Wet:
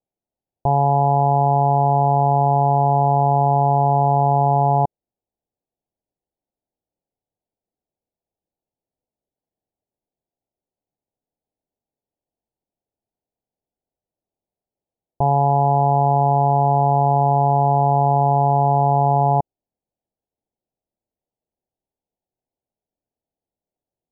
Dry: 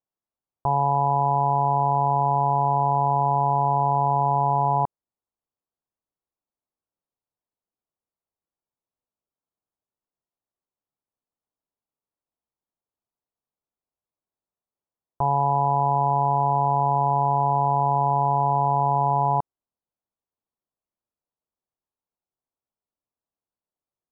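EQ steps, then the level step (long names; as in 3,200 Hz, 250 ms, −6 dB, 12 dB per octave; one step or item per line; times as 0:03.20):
Butterworth low-pass 840 Hz 48 dB per octave
+7.5 dB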